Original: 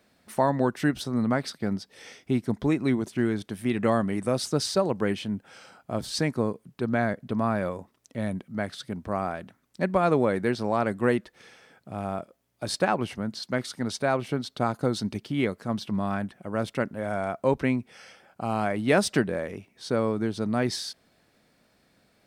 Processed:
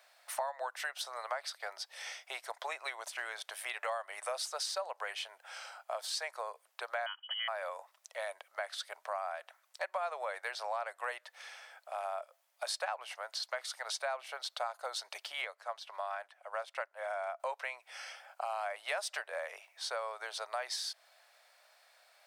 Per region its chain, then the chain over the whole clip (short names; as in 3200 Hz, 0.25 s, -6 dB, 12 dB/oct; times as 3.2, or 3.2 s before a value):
7.06–7.48 Chebyshev band-stop 110–1400 Hz + inverted band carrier 3100 Hz
15.42–17.4 high shelf 9100 Hz -8 dB + upward expander, over -39 dBFS
whole clip: steep high-pass 600 Hz 48 dB/oct; compressor 4:1, threshold -39 dBFS; gain +3 dB